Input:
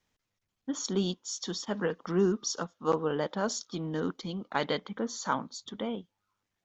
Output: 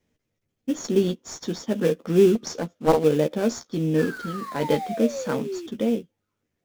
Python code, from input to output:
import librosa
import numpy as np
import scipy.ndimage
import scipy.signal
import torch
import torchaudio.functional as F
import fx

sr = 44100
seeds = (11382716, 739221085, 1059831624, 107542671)

p1 = fx.graphic_eq(x, sr, hz=(125, 250, 500, 1000, 2000, 4000), db=(5, 5, 8, -11, 4, -4))
p2 = fx.spec_paint(p1, sr, seeds[0], shape='fall', start_s=3.98, length_s=1.69, low_hz=330.0, high_hz=1800.0, level_db=-35.0)
p3 = fx.comb_fb(p2, sr, f0_hz=50.0, decay_s=0.27, harmonics='all', damping=0.0, mix_pct=50, at=(4.04, 4.64))
p4 = fx.sample_hold(p3, sr, seeds[1], rate_hz=3000.0, jitter_pct=20)
p5 = p3 + (p4 * 10.0 ** (-7.5 / 20.0))
p6 = fx.doubler(p5, sr, ms=13.0, db=-7)
y = fx.doppler_dist(p6, sr, depth_ms=0.68, at=(2.35, 3.04))